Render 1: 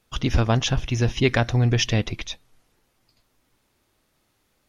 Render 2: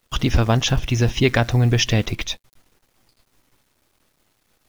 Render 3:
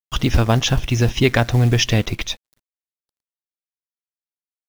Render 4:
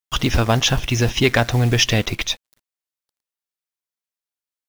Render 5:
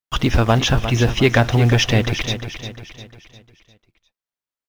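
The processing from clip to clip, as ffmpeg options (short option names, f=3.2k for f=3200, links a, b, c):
-filter_complex "[0:a]asplit=2[a][b];[b]acompressor=threshold=-26dB:ratio=6,volume=1dB[c];[a][c]amix=inputs=2:normalize=0,acrusher=bits=8:dc=4:mix=0:aa=0.000001"
-af "aeval=exprs='sgn(val(0))*max(abs(val(0))-0.00447,0)':c=same,acrusher=bits=7:mode=log:mix=0:aa=0.000001,volume=1.5dB"
-filter_complex "[0:a]lowshelf=f=380:g=-6,asplit=2[a][b];[b]asoftclip=type=hard:threshold=-18dB,volume=-5.5dB[c];[a][c]amix=inputs=2:normalize=0"
-filter_complex "[0:a]highshelf=f=3.5k:g=-9,asplit=2[a][b];[b]aecho=0:1:352|704|1056|1408|1760:0.316|0.139|0.0612|0.0269|0.0119[c];[a][c]amix=inputs=2:normalize=0,volume=2dB"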